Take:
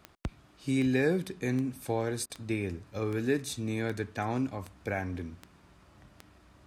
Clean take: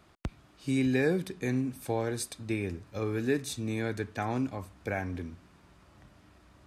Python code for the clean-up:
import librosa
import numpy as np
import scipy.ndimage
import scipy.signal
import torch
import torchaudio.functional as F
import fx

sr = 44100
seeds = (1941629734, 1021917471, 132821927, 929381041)

y = fx.fix_declick_ar(x, sr, threshold=10.0)
y = fx.fix_interpolate(y, sr, at_s=(2.26,), length_ms=37.0)